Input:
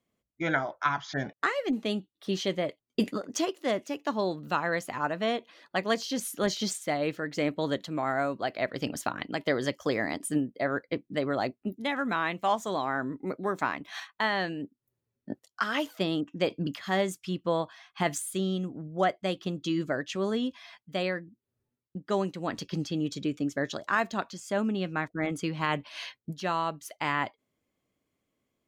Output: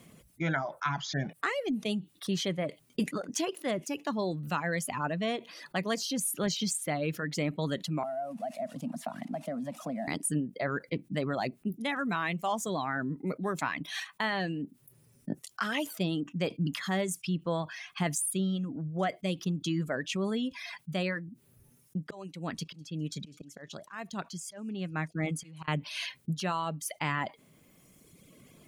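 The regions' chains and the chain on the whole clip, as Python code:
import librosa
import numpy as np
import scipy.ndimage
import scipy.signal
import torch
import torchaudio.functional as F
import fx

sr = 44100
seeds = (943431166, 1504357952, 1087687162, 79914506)

y = fx.chain(x, sr, fx.crossing_spikes(level_db=-21.0),
    fx.double_bandpass(hz=400.0, octaves=1.5),
    fx.band_squash(depth_pct=70), at=(8.03, 10.08))
y = fx.chain(y, sr, fx.auto_swell(attack_ms=551.0),
    fx.echo_wet_highpass(ms=203, feedback_pct=59, hz=3800.0, wet_db=-20),
    fx.upward_expand(threshold_db=-45.0, expansion=1.5), at=(22.04, 25.68))
y = fx.dereverb_blind(y, sr, rt60_s=1.1)
y = fx.graphic_eq_15(y, sr, hz=(160, 2500, 10000), db=(11, 3, 9))
y = fx.env_flatten(y, sr, amount_pct=50)
y = y * 10.0 ** (-7.5 / 20.0)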